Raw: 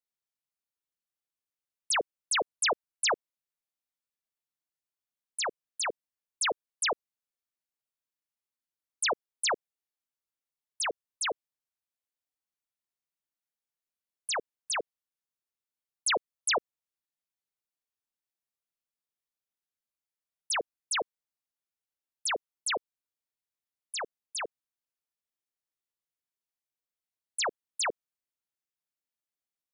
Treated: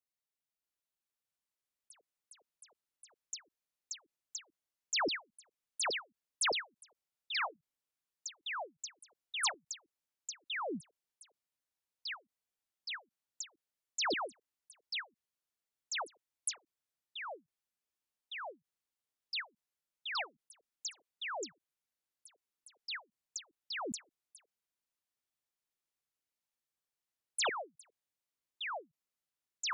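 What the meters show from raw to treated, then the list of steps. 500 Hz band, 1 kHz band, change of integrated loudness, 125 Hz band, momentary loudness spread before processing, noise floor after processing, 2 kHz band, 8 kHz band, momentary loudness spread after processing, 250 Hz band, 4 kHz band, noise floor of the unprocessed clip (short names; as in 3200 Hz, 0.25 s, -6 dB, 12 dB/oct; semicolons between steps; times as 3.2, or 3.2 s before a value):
-8.0 dB, -6.5 dB, -8.0 dB, n/a, 9 LU, under -85 dBFS, -5.0 dB, -8.0 dB, 13 LU, +1.0 dB, -5.0 dB, under -85 dBFS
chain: echoes that change speed 0.641 s, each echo -6 st, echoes 3; ending taper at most 340 dB/s; gain -3.5 dB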